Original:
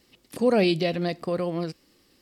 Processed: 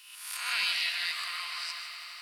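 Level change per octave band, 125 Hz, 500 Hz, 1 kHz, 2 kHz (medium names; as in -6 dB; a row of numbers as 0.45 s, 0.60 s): under -40 dB, -36.5 dB, -7.0 dB, +4.5 dB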